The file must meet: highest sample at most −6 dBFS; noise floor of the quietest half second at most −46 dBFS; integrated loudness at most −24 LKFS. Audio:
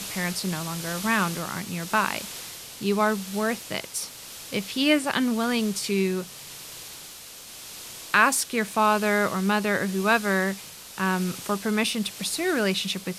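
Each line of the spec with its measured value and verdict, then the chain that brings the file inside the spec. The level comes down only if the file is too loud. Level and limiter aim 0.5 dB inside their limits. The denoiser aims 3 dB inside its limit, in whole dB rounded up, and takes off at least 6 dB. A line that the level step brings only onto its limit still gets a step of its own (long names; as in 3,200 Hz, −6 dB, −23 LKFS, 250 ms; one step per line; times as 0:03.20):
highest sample −5.0 dBFS: out of spec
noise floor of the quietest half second −43 dBFS: out of spec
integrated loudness −25.0 LKFS: in spec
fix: broadband denoise 6 dB, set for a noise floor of −43 dBFS
brickwall limiter −6.5 dBFS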